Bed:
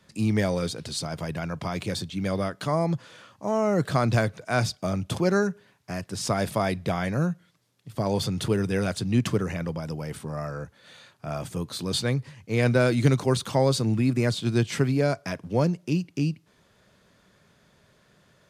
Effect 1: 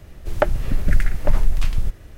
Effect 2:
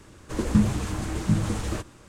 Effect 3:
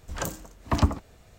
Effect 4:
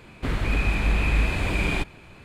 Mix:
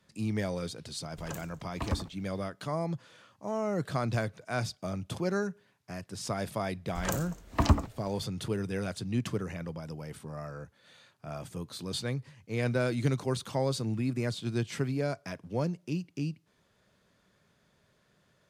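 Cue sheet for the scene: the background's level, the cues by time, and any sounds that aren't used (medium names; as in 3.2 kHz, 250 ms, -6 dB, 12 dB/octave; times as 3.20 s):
bed -8 dB
1.09 s: add 3 -11 dB
6.87 s: add 3 -1.5 dB
not used: 1, 2, 4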